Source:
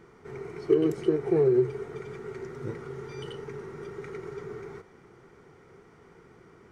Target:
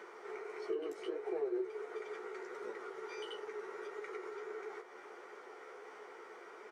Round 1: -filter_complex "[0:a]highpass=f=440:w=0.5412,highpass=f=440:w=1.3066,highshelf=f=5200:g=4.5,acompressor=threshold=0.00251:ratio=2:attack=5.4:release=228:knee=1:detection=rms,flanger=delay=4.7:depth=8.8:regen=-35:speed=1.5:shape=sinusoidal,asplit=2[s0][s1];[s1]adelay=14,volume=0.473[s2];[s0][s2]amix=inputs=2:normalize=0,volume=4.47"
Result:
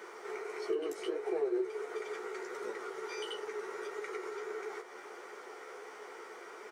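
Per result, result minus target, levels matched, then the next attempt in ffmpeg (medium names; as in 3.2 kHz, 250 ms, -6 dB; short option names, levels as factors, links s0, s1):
8 kHz band +6.5 dB; compression: peak gain reduction -4 dB
-filter_complex "[0:a]highpass=f=440:w=0.5412,highpass=f=440:w=1.3066,highshelf=f=5200:g=-6,acompressor=threshold=0.00251:ratio=2:attack=5.4:release=228:knee=1:detection=rms,flanger=delay=4.7:depth=8.8:regen=-35:speed=1.5:shape=sinusoidal,asplit=2[s0][s1];[s1]adelay=14,volume=0.473[s2];[s0][s2]amix=inputs=2:normalize=0,volume=4.47"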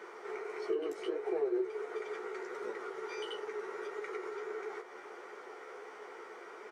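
compression: peak gain reduction -4 dB
-filter_complex "[0:a]highpass=f=440:w=0.5412,highpass=f=440:w=1.3066,highshelf=f=5200:g=-6,acompressor=threshold=0.001:ratio=2:attack=5.4:release=228:knee=1:detection=rms,flanger=delay=4.7:depth=8.8:regen=-35:speed=1.5:shape=sinusoidal,asplit=2[s0][s1];[s1]adelay=14,volume=0.473[s2];[s0][s2]amix=inputs=2:normalize=0,volume=4.47"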